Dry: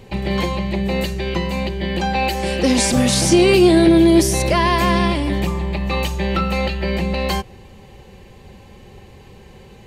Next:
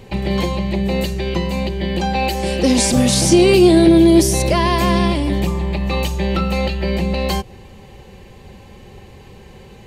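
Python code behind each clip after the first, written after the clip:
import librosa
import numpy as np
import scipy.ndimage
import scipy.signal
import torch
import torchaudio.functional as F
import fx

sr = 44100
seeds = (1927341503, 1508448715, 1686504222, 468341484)

y = fx.dynamic_eq(x, sr, hz=1600.0, q=0.82, threshold_db=-34.0, ratio=4.0, max_db=-5)
y = F.gain(torch.from_numpy(y), 2.0).numpy()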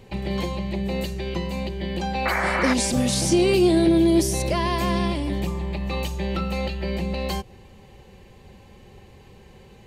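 y = fx.spec_paint(x, sr, seeds[0], shape='noise', start_s=2.25, length_s=0.49, low_hz=500.0, high_hz=2400.0, level_db=-17.0)
y = F.gain(torch.from_numpy(y), -7.5).numpy()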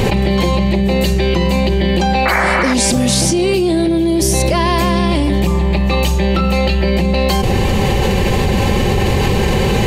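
y = fx.env_flatten(x, sr, amount_pct=100)
y = F.gain(torch.from_numpy(y), 1.5).numpy()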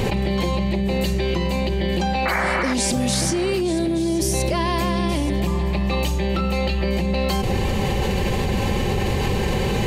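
y = x + 10.0 ** (-15.0 / 20.0) * np.pad(x, (int(877 * sr / 1000.0), 0))[:len(x)]
y = F.gain(torch.from_numpy(y), -7.5).numpy()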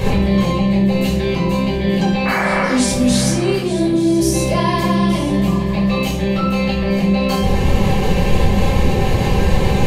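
y = fx.room_shoebox(x, sr, seeds[1], volume_m3=680.0, walls='furnished', distance_m=5.4)
y = F.gain(torch.from_numpy(y), -3.5).numpy()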